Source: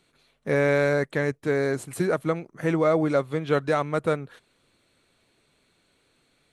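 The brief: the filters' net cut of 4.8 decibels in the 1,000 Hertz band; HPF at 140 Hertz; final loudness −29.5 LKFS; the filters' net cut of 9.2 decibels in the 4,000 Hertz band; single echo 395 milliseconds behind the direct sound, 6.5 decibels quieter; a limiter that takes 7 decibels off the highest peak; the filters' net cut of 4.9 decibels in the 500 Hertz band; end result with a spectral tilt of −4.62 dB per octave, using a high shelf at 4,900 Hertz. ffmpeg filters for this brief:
ffmpeg -i in.wav -af "highpass=140,equalizer=frequency=500:width_type=o:gain=-4.5,equalizer=frequency=1000:width_type=o:gain=-4.5,equalizer=frequency=4000:width_type=o:gain=-7,highshelf=frequency=4900:gain=-8.5,alimiter=limit=-20.5dB:level=0:latency=1,aecho=1:1:395:0.473,volume=2dB" out.wav

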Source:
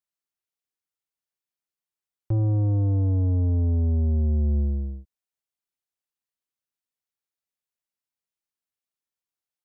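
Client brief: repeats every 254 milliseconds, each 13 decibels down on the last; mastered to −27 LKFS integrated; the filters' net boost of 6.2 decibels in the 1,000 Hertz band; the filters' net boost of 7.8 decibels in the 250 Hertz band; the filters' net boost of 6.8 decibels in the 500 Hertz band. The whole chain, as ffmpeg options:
ffmpeg -i in.wav -af "equalizer=frequency=250:width_type=o:gain=7.5,equalizer=frequency=500:width_type=o:gain=4.5,equalizer=frequency=1000:width_type=o:gain=6,aecho=1:1:254|508|762:0.224|0.0493|0.0108,volume=-5.5dB" out.wav

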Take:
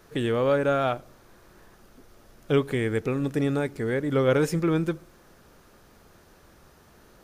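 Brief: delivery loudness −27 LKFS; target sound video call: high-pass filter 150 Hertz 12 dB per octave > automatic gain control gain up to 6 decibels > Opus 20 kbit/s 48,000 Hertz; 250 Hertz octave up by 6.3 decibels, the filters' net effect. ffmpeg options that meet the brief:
ffmpeg -i in.wav -af "highpass=150,equalizer=frequency=250:width_type=o:gain=8.5,dynaudnorm=maxgain=6dB,volume=-4.5dB" -ar 48000 -c:a libopus -b:a 20k out.opus

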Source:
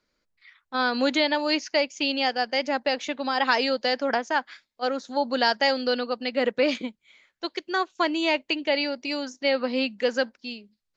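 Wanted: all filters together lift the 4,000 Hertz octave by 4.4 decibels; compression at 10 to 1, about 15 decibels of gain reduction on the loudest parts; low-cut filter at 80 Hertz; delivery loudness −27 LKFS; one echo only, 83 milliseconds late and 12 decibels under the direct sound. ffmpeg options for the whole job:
ffmpeg -i in.wav -af "highpass=80,equalizer=frequency=4000:width_type=o:gain=5.5,acompressor=threshold=-32dB:ratio=10,aecho=1:1:83:0.251,volume=9dB" out.wav

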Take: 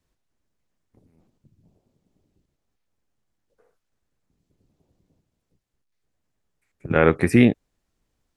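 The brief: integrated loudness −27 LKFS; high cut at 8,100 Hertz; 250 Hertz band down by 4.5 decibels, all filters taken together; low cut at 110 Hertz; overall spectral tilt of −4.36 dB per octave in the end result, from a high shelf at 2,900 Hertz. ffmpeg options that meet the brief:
ffmpeg -i in.wav -af "highpass=110,lowpass=8100,equalizer=frequency=250:width_type=o:gain=-5,highshelf=frequency=2900:gain=-7,volume=-5.5dB" out.wav

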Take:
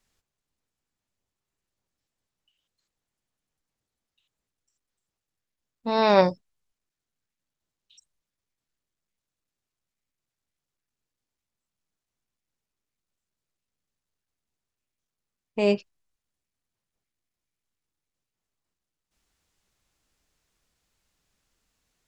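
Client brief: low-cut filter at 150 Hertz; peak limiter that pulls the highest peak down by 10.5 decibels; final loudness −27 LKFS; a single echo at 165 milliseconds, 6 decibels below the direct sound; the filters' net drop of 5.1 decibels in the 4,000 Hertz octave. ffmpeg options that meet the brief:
ffmpeg -i in.wav -af "highpass=150,equalizer=frequency=4000:width_type=o:gain=-6,alimiter=limit=-15.5dB:level=0:latency=1,aecho=1:1:165:0.501,volume=1.5dB" out.wav

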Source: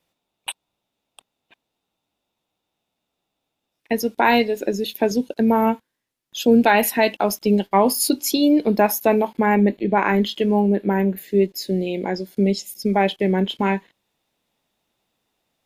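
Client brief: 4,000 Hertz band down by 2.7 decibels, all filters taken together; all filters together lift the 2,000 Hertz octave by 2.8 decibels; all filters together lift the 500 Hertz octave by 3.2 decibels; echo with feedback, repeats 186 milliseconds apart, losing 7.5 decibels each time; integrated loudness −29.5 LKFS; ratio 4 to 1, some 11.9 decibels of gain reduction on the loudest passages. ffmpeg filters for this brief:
ffmpeg -i in.wav -af "equalizer=frequency=500:width_type=o:gain=4,equalizer=frequency=2000:width_type=o:gain=4.5,equalizer=frequency=4000:width_type=o:gain=-5.5,acompressor=threshold=-23dB:ratio=4,aecho=1:1:186|372|558|744|930:0.422|0.177|0.0744|0.0312|0.0131,volume=-3dB" out.wav

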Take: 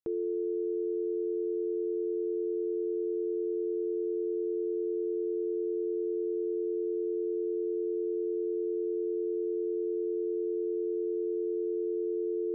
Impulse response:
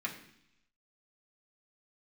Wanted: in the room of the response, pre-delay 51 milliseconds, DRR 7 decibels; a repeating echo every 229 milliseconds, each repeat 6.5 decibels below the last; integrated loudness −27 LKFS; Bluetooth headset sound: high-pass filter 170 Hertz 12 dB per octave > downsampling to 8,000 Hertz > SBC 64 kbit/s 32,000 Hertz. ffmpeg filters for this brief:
-filter_complex "[0:a]aecho=1:1:229|458|687|916|1145|1374:0.473|0.222|0.105|0.0491|0.0231|0.0109,asplit=2[link_01][link_02];[1:a]atrim=start_sample=2205,adelay=51[link_03];[link_02][link_03]afir=irnorm=-1:irlink=0,volume=-10dB[link_04];[link_01][link_04]amix=inputs=2:normalize=0,highpass=170,aresample=8000,aresample=44100,volume=4dB" -ar 32000 -c:a sbc -b:a 64k

